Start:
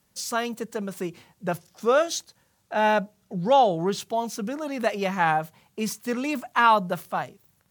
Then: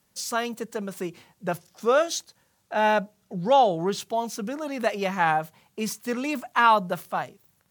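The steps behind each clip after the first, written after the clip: bass shelf 160 Hz -4 dB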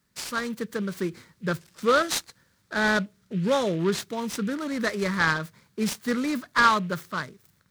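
level rider gain up to 5.5 dB; static phaser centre 2.8 kHz, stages 6; delay time shaken by noise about 2.3 kHz, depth 0.031 ms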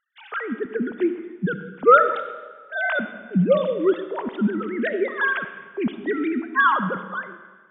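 formants replaced by sine waves; algorithmic reverb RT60 1.4 s, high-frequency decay 0.85×, pre-delay 15 ms, DRR 9 dB; trim +3.5 dB

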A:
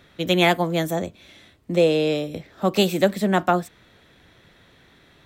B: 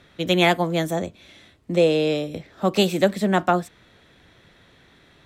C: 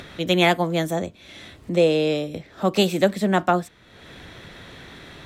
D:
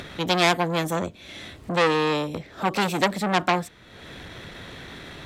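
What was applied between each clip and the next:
low-pass 12 kHz 12 dB/octave
upward compressor, threshold -30 dBFS
transformer saturation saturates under 2.7 kHz; trim +2.5 dB

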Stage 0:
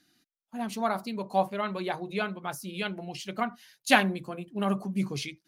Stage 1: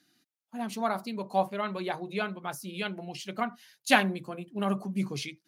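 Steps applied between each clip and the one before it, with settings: high-pass 98 Hz; trim -1 dB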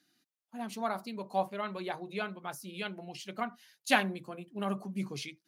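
bass shelf 130 Hz -4.5 dB; trim -4 dB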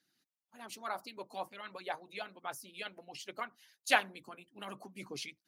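harmonic-percussive split harmonic -17 dB

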